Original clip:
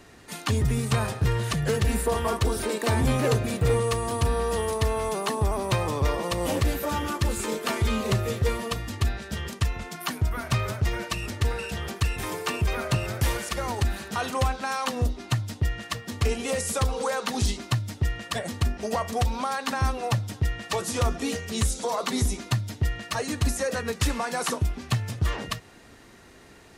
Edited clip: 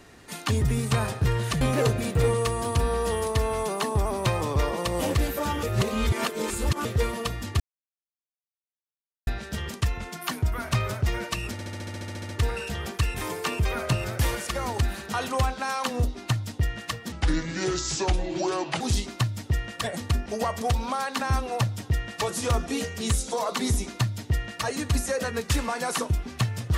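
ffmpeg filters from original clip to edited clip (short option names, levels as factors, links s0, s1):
-filter_complex "[0:a]asplit=18[s0][s1][s2][s3][s4][s5][s6][s7][s8][s9][s10][s11][s12][s13][s14][s15][s16][s17];[s0]atrim=end=1.612[s18];[s1]atrim=start=3.068:end=7.092[s19];[s2]atrim=start=7.088:end=8.312,asetpts=PTS-STARTPTS,areverse[s20];[s3]atrim=start=8.308:end=9.06,asetpts=PTS-STARTPTS,afade=t=out:st=0.748:d=0.004:c=hsin,apad=pad_dur=1.67[s21];[s4]atrim=start=9.06:end=11.382,asetpts=PTS-STARTPTS,afade=t=in:d=0.004:c=hsin[s22];[s5]atrim=start=11.308:end=11.382[s23];[s6]atrim=start=11.308:end=11.382[s24];[s7]atrim=start=11.308:end=11.382[s25];[s8]atrim=start=11.308:end=11.382[s26];[s9]atrim=start=11.308:end=11.382[s27];[s10]atrim=start=11.308:end=11.382[s28];[s11]atrim=start=11.308:end=11.382[s29];[s12]atrim=start=11.308:end=11.382[s30];[s13]atrim=start=11.308:end=11.382[s31];[s14]atrim=start=11.308:end=11.382[s32];[s15]atrim=start=11.308:end=16.144[s33];[s16]atrim=start=16.14:end=17.32,asetpts=PTS-STARTPTS,asetrate=30870,aresample=44100[s34];[s17]atrim=start=17.316[s35];[s18][s19]acrossfade=d=0.004:c1=hsin:c2=hsin[s36];[s36][s20]acrossfade=d=0.004:c1=hsin:c2=hsin[s37];[s21][s22]concat=n=2:v=0:a=1[s38];[s37][s38]acrossfade=d=0.004:c1=hsin:c2=hsin[s39];[s39][s23]acrossfade=d=0.004:c1=hsin:c2=hsin[s40];[s40][s24]acrossfade=d=0.004:c1=hsin:c2=hsin[s41];[s41][s25]acrossfade=d=0.004:c1=hsin:c2=hsin[s42];[s42][s26]acrossfade=d=0.004:c1=hsin:c2=hsin[s43];[s43][s27]acrossfade=d=0.004:c1=hsin:c2=hsin[s44];[s44][s28]acrossfade=d=0.004:c1=hsin:c2=hsin[s45];[s45][s29]acrossfade=d=0.004:c1=hsin:c2=hsin[s46];[s46][s30]acrossfade=d=0.004:c1=hsin:c2=hsin[s47];[s47][s31]acrossfade=d=0.004:c1=hsin:c2=hsin[s48];[s48][s32]acrossfade=d=0.004:c1=hsin:c2=hsin[s49];[s49][s33]acrossfade=d=0.004:c1=hsin:c2=hsin[s50];[s50][s34]acrossfade=d=0.004:c1=hsin:c2=hsin[s51];[s51][s35]acrossfade=d=0.004:c1=hsin:c2=hsin"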